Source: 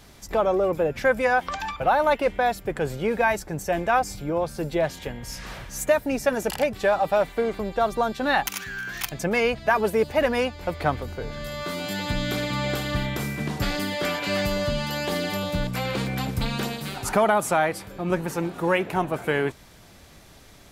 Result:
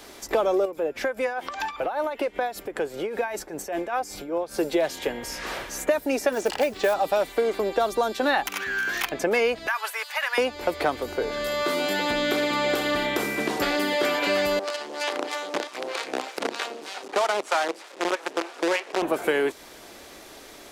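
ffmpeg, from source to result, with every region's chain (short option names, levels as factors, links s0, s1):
-filter_complex "[0:a]asettb=1/sr,asplit=3[s0][s1][s2];[s0]atrim=end=0.654[s3];[s1]atrim=start=0.65:end=4.54,asetpts=PTS-STARTPTS,afade=t=in:d=0.004:c=qsin,afade=t=out:st=3.886:d=0.004:c=qsin,acompressor=threshold=0.0251:ratio=2.5:attack=3.2:release=140:knee=1:detection=peak,tremolo=f=5.1:d=0.66[s4];[s2]atrim=start=4.536[s5];[s3][s4]acrossfade=d=0.004:c1=hsin:c2=qsin[s6];[s6][s5]acrossfade=d=0.004:c1=qsin:c2=hsin,asettb=1/sr,asplit=3[s7][s8][s9];[s7]atrim=end=6.324[s10];[s8]atrim=start=6.32:end=6.94,asetpts=PTS-STARTPTS,afade=t=in:d=0.004:c=qsin,afade=t=out:st=0.616:d=0.004:c=qsin,lowpass=5900,acrusher=bits=6:mode=log:mix=0:aa=0.000001[s11];[s9]atrim=start=6.936[s12];[s10][s11]acrossfade=d=0.004:c1=hsin:c2=qsin[s13];[s13][s12]acrossfade=d=0.004:c1=qsin:c2=hsin,asettb=1/sr,asplit=3[s14][s15][s16];[s14]atrim=end=9.674[s17];[s15]atrim=start=9.67:end=10.38,asetpts=PTS-STARTPTS,afade=t=in:d=0.004:c=qsin,afade=t=out:st=0.706:d=0.004:c=qsin,highpass=f=1100:w=0.5412,highpass=f=1100:w=1.3066,acompressor=threshold=0.0447:ratio=5:attack=3.2:release=140:knee=1:detection=peak[s18];[s16]atrim=start=10.376[s19];[s17][s18]acrossfade=d=0.004:c1=hsin:c2=qsin[s20];[s20][s19]acrossfade=d=0.004:c1=qsin:c2=hsin,asettb=1/sr,asplit=3[s21][s22][s23];[s21]atrim=end=14.594[s24];[s22]atrim=start=14.59:end=19.02,asetpts=PTS-STARTPTS,afade=t=in:d=0.004:c=qsin,afade=t=out:st=4.426:d=0.004:c=qsin,acrossover=split=570[s25][s26];[s25]aeval=exprs='val(0)*(1-1/2+1/2*cos(2*PI*3.2*n/s))':c=same[s27];[s26]aeval=exprs='val(0)*(1-1/2-1/2*cos(2*PI*3.2*n/s))':c=same[s28];[s27][s28]amix=inputs=2:normalize=0,acrusher=bits=5:dc=4:mix=0:aa=0.000001,highpass=360,lowpass=7000[s29];[s23]atrim=start=19.016[s30];[s24][s29]acrossfade=d=0.004:c1=hsin:c2=qsin[s31];[s31][s30]acrossfade=d=0.004:c1=qsin:c2=hsin,lowshelf=f=220:t=q:w=1.5:g=-13.5,acrossover=split=220|3300[s32][s33][s34];[s32]acompressor=threshold=0.00447:ratio=4[s35];[s33]acompressor=threshold=0.0398:ratio=4[s36];[s34]acompressor=threshold=0.00794:ratio=4[s37];[s35][s36][s37]amix=inputs=3:normalize=0,volume=2.11"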